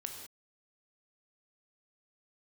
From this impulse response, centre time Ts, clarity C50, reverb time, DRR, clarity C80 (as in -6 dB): 34 ms, 5.0 dB, no single decay rate, 3.0 dB, 6.5 dB